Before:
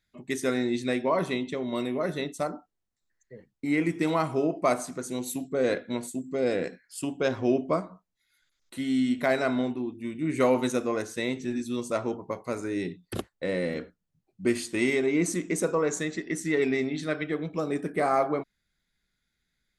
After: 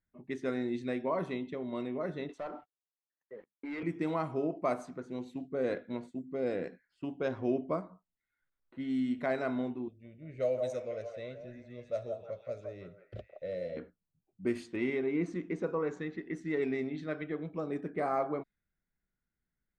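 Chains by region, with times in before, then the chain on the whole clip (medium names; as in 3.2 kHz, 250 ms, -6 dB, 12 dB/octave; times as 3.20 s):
2.29–3.83 s: high-pass 440 Hz + compression 1.5:1, threshold -48 dBFS + waveshaping leveller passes 3
9.88–13.77 s: FFT filter 110 Hz 0 dB, 310 Hz -18 dB, 610 Hz +5 dB, 920 Hz -25 dB, 1.3 kHz -13 dB, 5.7 kHz +3 dB, 12 kHz -3 dB + repeats whose band climbs or falls 168 ms, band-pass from 800 Hz, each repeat 0.7 oct, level -1 dB
14.76–16.34 s: low-pass 4 kHz + band-stop 620 Hz, Q 9
whole clip: peaking EQ 9.5 kHz -13 dB 2.5 oct; level-controlled noise filter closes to 1.6 kHz, open at -22 dBFS; trim -6.5 dB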